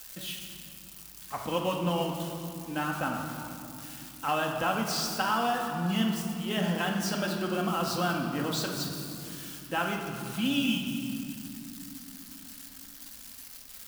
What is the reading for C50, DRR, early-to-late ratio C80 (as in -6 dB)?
3.5 dB, 0.5 dB, 5.0 dB